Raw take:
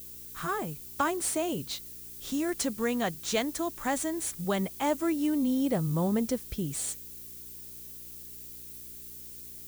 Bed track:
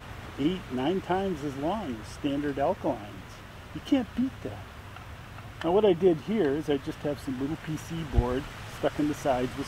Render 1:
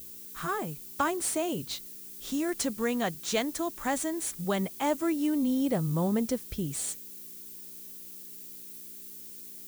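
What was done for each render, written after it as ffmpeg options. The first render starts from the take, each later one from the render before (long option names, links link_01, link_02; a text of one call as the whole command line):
ffmpeg -i in.wav -af "bandreject=frequency=60:width_type=h:width=4,bandreject=frequency=120:width_type=h:width=4" out.wav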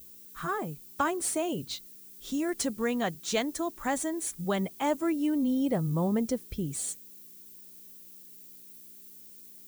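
ffmpeg -i in.wav -af "afftdn=noise_reduction=7:noise_floor=-45" out.wav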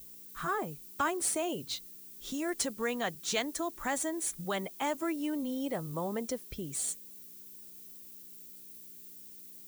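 ffmpeg -i in.wav -filter_complex "[0:a]acrossover=split=380|1100|5000[link_01][link_02][link_03][link_04];[link_01]acompressor=threshold=-41dB:ratio=6[link_05];[link_02]alimiter=level_in=5.5dB:limit=-24dB:level=0:latency=1,volume=-5.5dB[link_06];[link_05][link_06][link_03][link_04]amix=inputs=4:normalize=0" out.wav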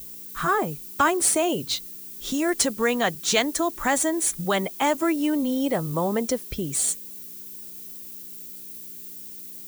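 ffmpeg -i in.wav -af "volume=10.5dB" out.wav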